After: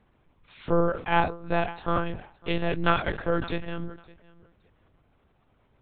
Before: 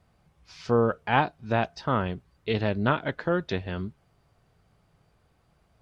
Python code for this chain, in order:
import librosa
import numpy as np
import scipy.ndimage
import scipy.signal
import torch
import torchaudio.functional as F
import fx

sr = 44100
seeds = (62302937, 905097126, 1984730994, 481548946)

y = fx.peak_eq(x, sr, hz=2600.0, db=fx.line((2.7, 11.5), (3.13, 1.0)), octaves=1.8, at=(2.7, 3.13), fade=0.02)
y = fx.echo_feedback(y, sr, ms=560, feedback_pct=20, wet_db=-22.5)
y = fx.lpc_monotone(y, sr, seeds[0], pitch_hz=170.0, order=10)
y = fx.sustainer(y, sr, db_per_s=130.0)